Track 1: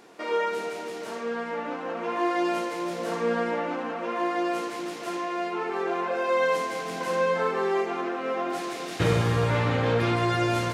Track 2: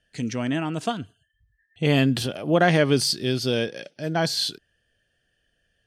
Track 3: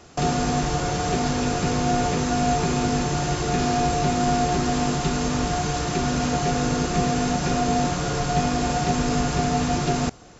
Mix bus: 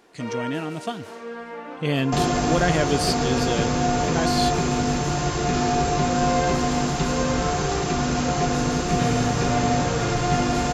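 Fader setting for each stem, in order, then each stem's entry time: -4.0 dB, -3.5 dB, 0.0 dB; 0.00 s, 0.00 s, 1.95 s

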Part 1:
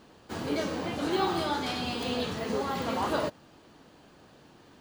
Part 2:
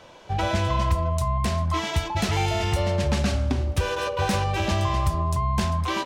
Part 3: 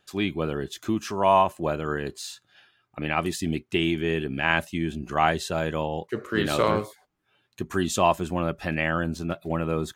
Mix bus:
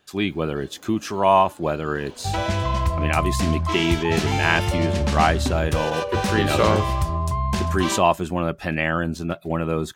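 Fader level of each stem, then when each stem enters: -19.5 dB, +0.5 dB, +3.0 dB; 0.00 s, 1.95 s, 0.00 s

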